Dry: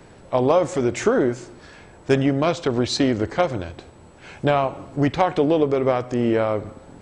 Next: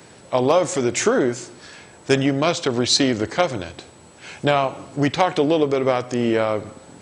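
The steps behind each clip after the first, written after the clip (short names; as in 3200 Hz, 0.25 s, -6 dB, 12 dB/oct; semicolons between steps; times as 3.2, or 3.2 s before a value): HPF 100 Hz; high shelf 2700 Hz +11 dB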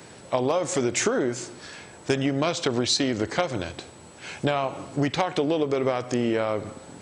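compressor, threshold -20 dBFS, peak gain reduction 8.5 dB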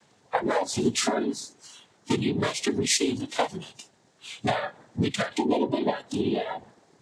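noise vocoder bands 6; spectral noise reduction 15 dB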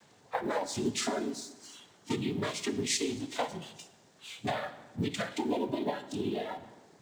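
G.711 law mismatch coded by mu; reverb RT60 1.1 s, pre-delay 6 ms, DRR 11.5 dB; gain -8 dB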